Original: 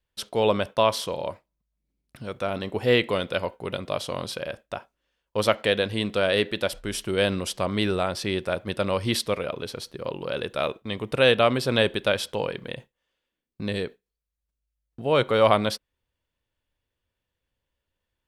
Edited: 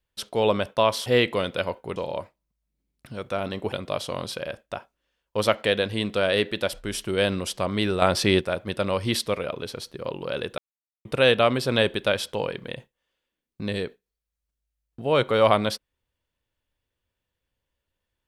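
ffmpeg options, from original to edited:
ffmpeg -i in.wav -filter_complex "[0:a]asplit=8[link_01][link_02][link_03][link_04][link_05][link_06][link_07][link_08];[link_01]atrim=end=1.062[link_09];[link_02]atrim=start=2.818:end=3.722[link_10];[link_03]atrim=start=1.058:end=2.822[link_11];[link_04]atrim=start=3.718:end=8.022[link_12];[link_05]atrim=start=8.018:end=8.412,asetpts=PTS-STARTPTS,volume=7dB[link_13];[link_06]atrim=start=8.408:end=10.58,asetpts=PTS-STARTPTS,afade=type=out:start_time=2.168:duration=0.004:curve=hsin[link_14];[link_07]atrim=start=10.58:end=11.05,asetpts=PTS-STARTPTS,volume=0[link_15];[link_08]atrim=start=11.05,asetpts=PTS-STARTPTS,afade=type=in:duration=0.004:curve=hsin[link_16];[link_09][link_10]acrossfade=duration=0.004:curve1=hsin:curve2=hsin[link_17];[link_17][link_11]acrossfade=duration=0.004:curve1=hsin:curve2=hsin[link_18];[link_18][link_12]acrossfade=duration=0.004:curve1=hsin:curve2=hsin[link_19];[link_19][link_13]acrossfade=duration=0.004:curve1=hsin:curve2=hsin[link_20];[link_14][link_15][link_16]concat=n=3:v=0:a=1[link_21];[link_20][link_21]acrossfade=duration=0.004:curve1=hsin:curve2=hsin" out.wav

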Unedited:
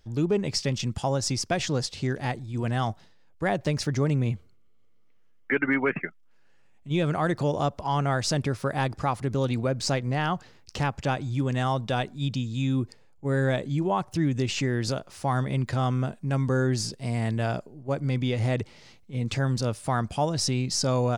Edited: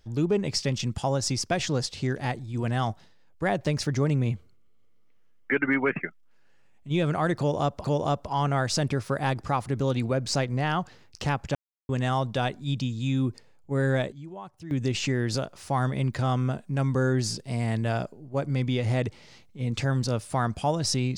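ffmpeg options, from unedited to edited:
ffmpeg -i in.wav -filter_complex "[0:a]asplit=6[link_01][link_02][link_03][link_04][link_05][link_06];[link_01]atrim=end=7.842[link_07];[link_02]atrim=start=7.378:end=11.09,asetpts=PTS-STARTPTS,afade=type=out:start_time=3.708:duration=0.004:curve=hsin[link_08];[link_03]atrim=start=11.09:end=11.43,asetpts=PTS-STARTPTS,volume=0[link_09];[link_04]atrim=start=11.43:end=13.66,asetpts=PTS-STARTPTS,afade=type=in:duration=0.004:curve=hsin,afade=type=out:start_time=1.98:duration=0.25:curve=log:silence=0.177828[link_10];[link_05]atrim=start=13.66:end=14.25,asetpts=PTS-STARTPTS,volume=-15dB[link_11];[link_06]atrim=start=14.25,asetpts=PTS-STARTPTS,afade=type=in:duration=0.25:curve=log:silence=0.177828[link_12];[link_08][link_09][link_10][link_11][link_12]concat=n=5:v=0:a=1[link_13];[link_07][link_13]acrossfade=duration=0.004:curve1=hsin:curve2=hsin" out.wav

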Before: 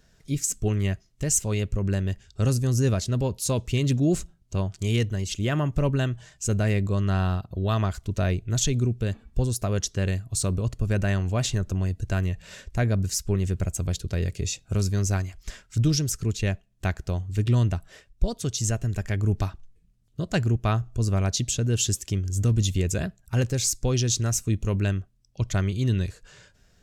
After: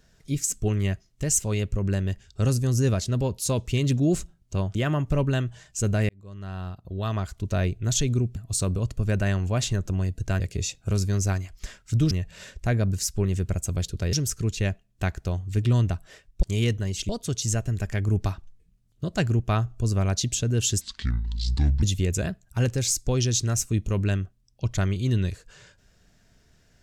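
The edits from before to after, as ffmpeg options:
ffmpeg -i in.wav -filter_complex "[0:a]asplit=11[link_01][link_02][link_03][link_04][link_05][link_06][link_07][link_08][link_09][link_10][link_11];[link_01]atrim=end=4.752[link_12];[link_02]atrim=start=5.408:end=6.75,asetpts=PTS-STARTPTS,afade=type=out:start_time=1.338:duration=0.004:curve=hsin[link_13];[link_03]atrim=start=6.75:end=9.022,asetpts=PTS-STARTPTS,afade=type=in:duration=1.55[link_14];[link_04]atrim=start=10.178:end=12.222[link_15];[link_05]atrim=start=14.238:end=15.952[link_16];[link_06]atrim=start=12.218:end=14.242[link_17];[link_07]atrim=start=15.948:end=18.252[link_18];[link_08]atrim=start=4.748:end=5.412[link_19];[link_09]atrim=start=18.248:end=21.974[link_20];[link_10]atrim=start=21.97:end=22.59,asetpts=PTS-STARTPTS,asetrate=26901,aresample=44100[link_21];[link_11]atrim=start=22.586[link_22];[link_13][link_14]concat=n=2:v=0:a=1[link_23];[link_12][link_23]acrossfade=duration=0.004:curve1=hsin:curve2=hsin[link_24];[link_24][link_15]acrossfade=duration=0.004:curve1=hsin:curve2=hsin[link_25];[link_25][link_16]acrossfade=duration=0.004:curve1=hsin:curve2=hsin[link_26];[link_26][link_17]acrossfade=duration=0.004:curve1=hsin:curve2=hsin[link_27];[link_27][link_18]acrossfade=duration=0.004:curve1=hsin:curve2=hsin[link_28];[link_28][link_19]acrossfade=duration=0.004:curve1=hsin:curve2=hsin[link_29];[link_29][link_20]acrossfade=duration=0.004:curve1=hsin:curve2=hsin[link_30];[link_30][link_21]acrossfade=duration=0.004:curve1=hsin:curve2=hsin[link_31];[link_31][link_22]acrossfade=duration=0.004:curve1=hsin:curve2=hsin" out.wav

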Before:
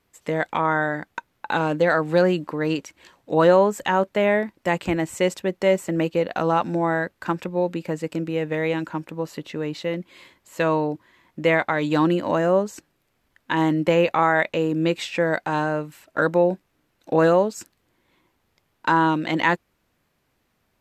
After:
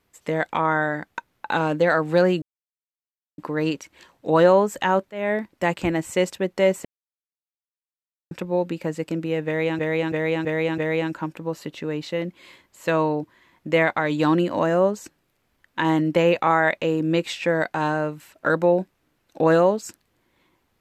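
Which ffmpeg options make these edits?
ffmpeg -i in.wav -filter_complex "[0:a]asplit=9[link_01][link_02][link_03][link_04][link_05][link_06][link_07][link_08][link_09];[link_01]atrim=end=2.42,asetpts=PTS-STARTPTS,afade=type=out:start_time=2.416:duration=0.004:curve=hsin,apad=pad_dur=0.96[link_10];[link_02]atrim=start=2.42:end=4.15,asetpts=PTS-STARTPTS,afade=type=in:duration=0.004:curve=hsin,afade=type=out:start_time=1.726:duration=0.004:curve=hsin:silence=0.0841395[link_11];[link_03]atrim=start=4.15:end=5.89,asetpts=PTS-STARTPTS,afade=type=in:duration=0.29:silence=0.0841395,afade=type=out:start_time=1.736:duration=0.004:curve=hsin[link_12];[link_04]atrim=start=5.89:end=7.35,asetpts=PTS-STARTPTS,volume=0[link_13];[link_05]atrim=start=7.35:end=8.832,asetpts=PTS-STARTPTS,afade=type=in:duration=0.004:curve=hsin[link_14];[link_06]atrim=start=8.498:end=8.832[link_15];[link_07]atrim=start=8.498:end=8.832[link_16];[link_08]atrim=start=8.498:end=8.832[link_17];[link_09]atrim=start=8.498[link_18];[link_10][link_11][link_12][link_13][link_14]concat=n=5:v=0:a=1[link_19];[link_19][link_15]acrossfade=duration=0.004:curve1=hsin:curve2=hsin[link_20];[link_20][link_16]acrossfade=duration=0.004:curve1=hsin:curve2=hsin[link_21];[link_21][link_17]acrossfade=duration=0.004:curve1=hsin:curve2=hsin[link_22];[link_22][link_18]acrossfade=duration=0.004:curve1=hsin:curve2=hsin" out.wav

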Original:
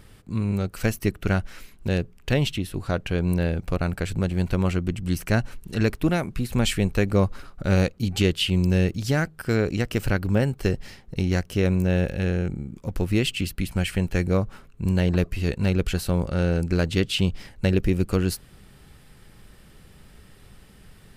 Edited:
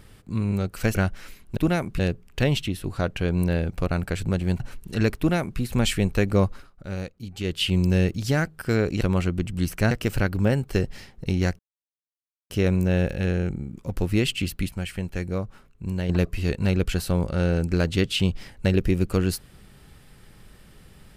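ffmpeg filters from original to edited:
ffmpeg -i in.wav -filter_complex "[0:a]asplit=12[link_01][link_02][link_03][link_04][link_05][link_06][link_07][link_08][link_09][link_10][link_11][link_12];[link_01]atrim=end=0.952[link_13];[link_02]atrim=start=1.268:end=1.892[link_14];[link_03]atrim=start=5.978:end=6.402[link_15];[link_04]atrim=start=1.888:end=4.502[link_16];[link_05]atrim=start=5.398:end=7.5,asetpts=PTS-STARTPTS,afade=type=out:start_time=1.852:duration=0.25:silence=0.266073[link_17];[link_06]atrim=start=7.5:end=8.2,asetpts=PTS-STARTPTS,volume=-11.5dB[link_18];[link_07]atrim=start=8.2:end=9.812,asetpts=PTS-STARTPTS,afade=type=in:duration=0.25:silence=0.266073[link_19];[link_08]atrim=start=4.498:end=5.402[link_20];[link_09]atrim=start=9.808:end=11.49,asetpts=PTS-STARTPTS,afade=type=out:start_time=1.678:duration=0.004:curve=hsin,apad=pad_dur=0.91[link_21];[link_10]atrim=start=11.49:end=13.682,asetpts=PTS-STARTPTS,afade=type=in:duration=0.004:curve=hsin[link_22];[link_11]atrim=start=13.678:end=15.082,asetpts=PTS-STARTPTS,volume=-6dB[link_23];[link_12]atrim=start=15.078[link_24];[link_13][link_14]acrossfade=duration=0.004:curve1=hsin:curve2=hsin[link_25];[link_25][link_15]acrossfade=duration=0.004:curve1=hsin:curve2=hsin[link_26];[link_26][link_16]acrossfade=duration=0.004:curve1=hsin:curve2=hsin[link_27];[link_17][link_18][link_19]concat=n=3:v=0:a=1[link_28];[link_27][link_28]acrossfade=duration=0.004:curve1=hsin:curve2=hsin[link_29];[link_29][link_20]acrossfade=duration=0.004:curve1=hsin:curve2=hsin[link_30];[link_21][link_22]concat=n=2:v=0:a=1[link_31];[link_30][link_31]acrossfade=duration=0.004:curve1=hsin:curve2=hsin[link_32];[link_32][link_23]acrossfade=duration=0.004:curve1=hsin:curve2=hsin[link_33];[link_33][link_24]acrossfade=duration=0.004:curve1=hsin:curve2=hsin" out.wav

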